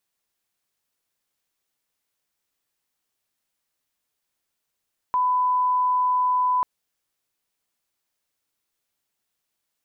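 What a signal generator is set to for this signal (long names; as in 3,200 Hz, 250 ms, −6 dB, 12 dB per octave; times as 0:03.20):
line-up tone −18 dBFS 1.49 s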